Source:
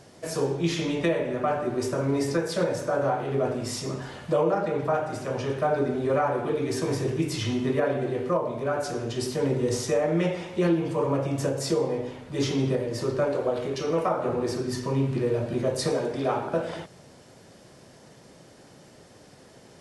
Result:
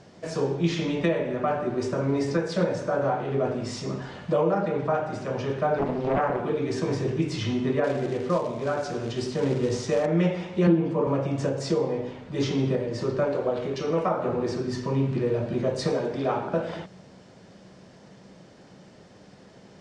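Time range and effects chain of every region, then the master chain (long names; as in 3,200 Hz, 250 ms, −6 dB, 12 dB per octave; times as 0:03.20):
0:05.78–0:06.40: high-pass filter 99 Hz 24 dB per octave + dynamic equaliser 2,800 Hz, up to −4 dB, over −43 dBFS, Q 1.2 + highs frequency-modulated by the lows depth 0.88 ms
0:07.84–0:10.06: floating-point word with a short mantissa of 2 bits + one half of a high-frequency compander encoder only
0:10.67–0:11.07: high-pass with resonance 190 Hz, resonance Q 1.6 + high-shelf EQ 2,500 Hz −8.5 dB
whole clip: Bessel low-pass filter 5,200 Hz, order 8; parametric band 190 Hz +10 dB 0.2 octaves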